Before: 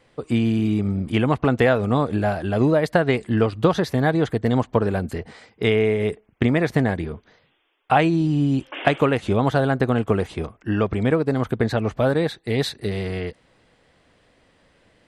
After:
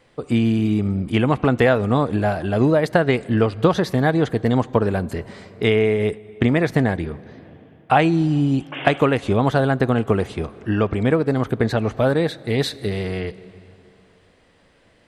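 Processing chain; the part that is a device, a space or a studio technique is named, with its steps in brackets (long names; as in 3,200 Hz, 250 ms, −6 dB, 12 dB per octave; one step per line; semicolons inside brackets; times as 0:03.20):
compressed reverb return (on a send at −12 dB: convolution reverb RT60 2.4 s, pre-delay 8 ms + downward compressor 6 to 1, threshold −26 dBFS, peak gain reduction 12 dB)
on the sum: level +1.5 dB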